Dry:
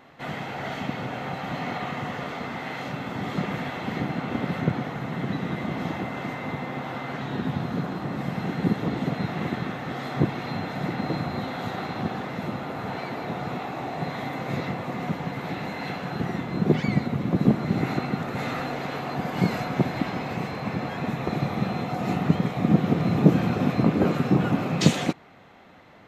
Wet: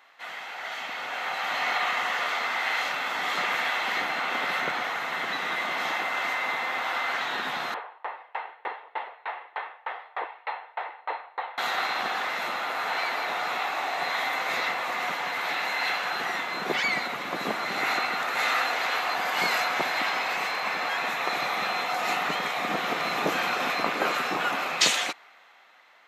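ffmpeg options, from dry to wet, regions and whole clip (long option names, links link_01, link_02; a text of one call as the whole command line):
ffmpeg -i in.wav -filter_complex "[0:a]asettb=1/sr,asplit=3[link_01][link_02][link_03];[link_01]atrim=end=7.744[link_04];[link_02]atrim=start=7.74:end=11.58,asetpts=PTS-STARTPTS,afade=type=in:duration=0.004:curve=qsin,afade=type=out:start_time=3.836:duration=0.004:curve=qsin,highpass=frequency=440:width=0.5412,highpass=frequency=440:width=1.3066,equalizer=frequency=460:width_type=q:width=4:gain=5,equalizer=frequency=900:width_type=q:width=4:gain=9,equalizer=frequency=1400:width_type=q:width=4:gain=-4,equalizer=frequency=2300:width_type=q:width=4:gain=-3,lowpass=frequency=2700:width=0.5412,lowpass=frequency=2700:width=1.3066,aeval=exprs='val(0)*pow(10,-31*if(lt(mod(3.3*n/s,1),2*abs(3.3)/1000),1-mod(3.3*n/s,1)/(2*abs(3.3)/1000),(mod(3.3*n/s,1)-2*abs(3.3)/1000)/(1-2*abs(3.3)/1000))/20)':channel_layout=same[link_05];[link_03]atrim=start=11.576[link_06];[link_04][link_05]acrossfade=duration=0.004:curve1=hsin:curve2=qsin[link_07];[link_07][link_06]acrossfade=duration=0.004:curve1=qsin:curve2=hsin,highpass=1100,dynaudnorm=framelen=110:gausssize=21:maxgain=10dB" out.wav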